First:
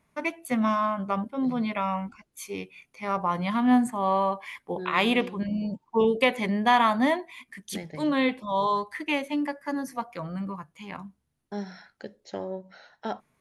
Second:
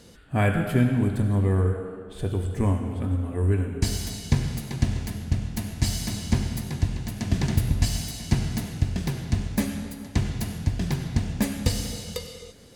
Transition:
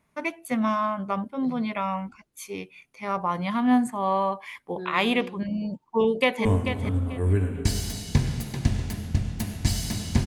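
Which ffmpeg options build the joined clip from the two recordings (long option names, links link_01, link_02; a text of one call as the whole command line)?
ffmpeg -i cue0.wav -i cue1.wav -filter_complex "[0:a]apad=whole_dur=10.26,atrim=end=10.26,atrim=end=6.452[link_01];[1:a]atrim=start=2.618:end=6.43[link_02];[link_01][link_02]acrossfade=duration=0.004:curve1=hsin:curve2=hsin,asplit=2[link_03][link_04];[link_04]afade=type=in:start_time=5.71:duration=0.01,afade=type=out:start_time=6.45:duration=0.01,aecho=0:1:440|880|1320:0.375837|0.0751675|0.0150335[link_05];[link_03][link_05]amix=inputs=2:normalize=0" out.wav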